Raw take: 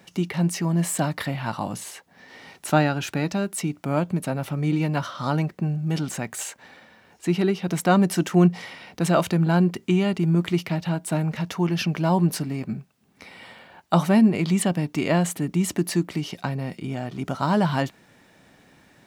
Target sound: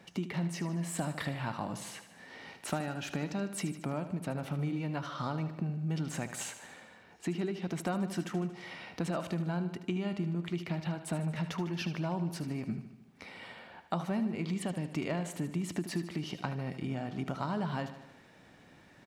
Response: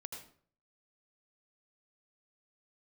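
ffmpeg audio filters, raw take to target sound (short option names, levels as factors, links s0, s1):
-filter_complex "[0:a]highshelf=f=8500:g=-10.5,acompressor=threshold=0.0398:ratio=6,asplit=2[s0][s1];[s1]aecho=0:1:76|152|228|304|380|456|532:0.266|0.157|0.0926|0.0546|0.0322|0.019|0.0112[s2];[s0][s2]amix=inputs=2:normalize=0,volume=0.668"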